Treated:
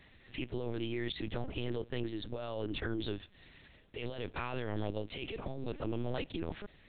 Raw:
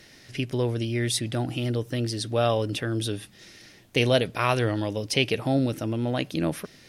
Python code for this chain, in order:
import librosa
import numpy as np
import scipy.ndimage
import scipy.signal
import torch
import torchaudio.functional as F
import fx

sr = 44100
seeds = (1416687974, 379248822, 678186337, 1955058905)

y = fx.peak_eq(x, sr, hz=130.0, db=-11.0, octaves=0.31)
y = fx.over_compress(y, sr, threshold_db=-28.0, ratio=-1.0)
y = fx.lpc_vocoder(y, sr, seeds[0], excitation='pitch_kept', order=8)
y = y * librosa.db_to_amplitude(-8.5)